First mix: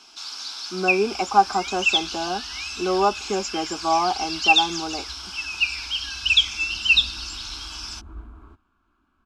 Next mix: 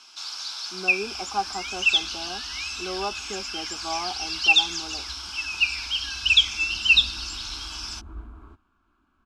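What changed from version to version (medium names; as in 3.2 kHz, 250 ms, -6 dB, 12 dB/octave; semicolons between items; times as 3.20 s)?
speech -10.5 dB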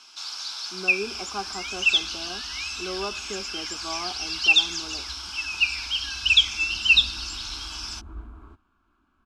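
speech: add peaking EQ 820 Hz -10 dB 0.31 oct; reverb: on, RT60 0.85 s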